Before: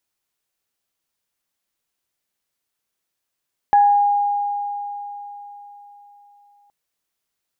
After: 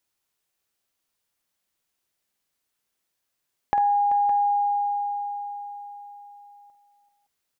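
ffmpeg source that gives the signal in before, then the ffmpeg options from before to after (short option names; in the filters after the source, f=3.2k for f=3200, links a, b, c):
-f lavfi -i "aevalsrc='0.355*pow(10,-3*t/3.98)*sin(2*PI*816*t)+0.0376*pow(10,-3*t/0.56)*sin(2*PI*1680*t)':d=2.97:s=44100"
-af "acompressor=threshold=-23dB:ratio=4,aecho=1:1:49|385|564:0.282|0.188|0.188"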